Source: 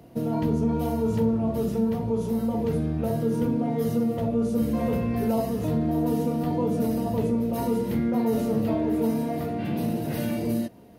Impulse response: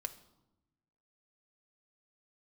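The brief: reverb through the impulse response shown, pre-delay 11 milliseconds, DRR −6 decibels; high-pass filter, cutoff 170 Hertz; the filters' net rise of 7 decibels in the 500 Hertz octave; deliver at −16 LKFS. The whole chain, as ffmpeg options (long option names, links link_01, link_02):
-filter_complex "[0:a]highpass=170,equalizer=frequency=500:width_type=o:gain=8,asplit=2[link_01][link_02];[1:a]atrim=start_sample=2205,adelay=11[link_03];[link_02][link_03]afir=irnorm=-1:irlink=0,volume=7.5dB[link_04];[link_01][link_04]amix=inputs=2:normalize=0,volume=-1dB"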